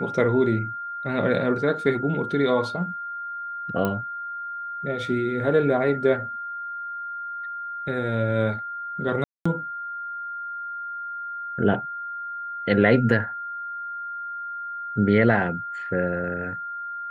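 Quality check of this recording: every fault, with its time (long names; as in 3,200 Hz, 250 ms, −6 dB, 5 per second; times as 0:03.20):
whistle 1,400 Hz −30 dBFS
0:03.85: click −12 dBFS
0:09.24–0:09.46: drop-out 215 ms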